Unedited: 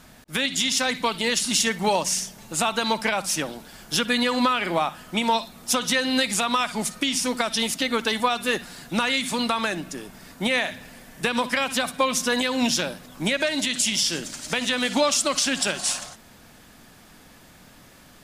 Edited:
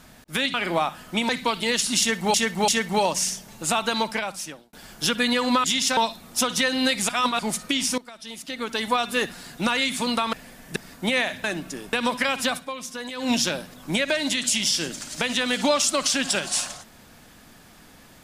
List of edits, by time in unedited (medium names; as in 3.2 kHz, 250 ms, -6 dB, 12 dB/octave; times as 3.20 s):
0.54–0.87 s: swap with 4.54–5.29 s
1.58–1.92 s: loop, 3 plays
2.82–3.63 s: fade out
6.41–6.71 s: reverse
7.30–8.28 s: fade in quadratic, from -19 dB
9.65–10.14 s: swap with 10.82–11.25 s
11.84–12.62 s: dip -11 dB, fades 0.16 s